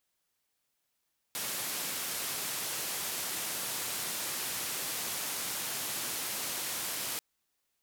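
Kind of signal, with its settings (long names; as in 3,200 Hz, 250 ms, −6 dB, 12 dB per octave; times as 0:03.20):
band-limited noise 110–15,000 Hz, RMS −36 dBFS 5.84 s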